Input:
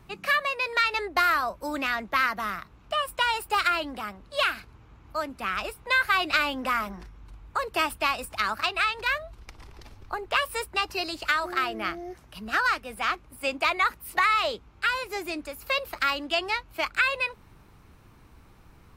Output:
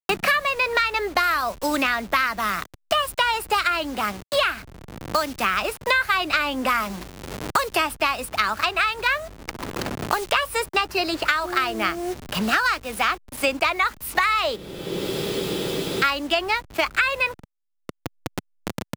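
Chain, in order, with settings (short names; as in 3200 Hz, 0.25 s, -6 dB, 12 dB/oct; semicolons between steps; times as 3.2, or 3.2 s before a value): level-crossing sampler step -43.5 dBFS; spectral freeze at 14.58, 1.45 s; three-band squash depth 100%; gain +4 dB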